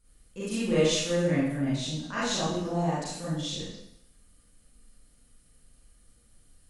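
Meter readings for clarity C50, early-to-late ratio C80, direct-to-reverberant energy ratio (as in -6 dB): -3.0 dB, 2.0 dB, -10.5 dB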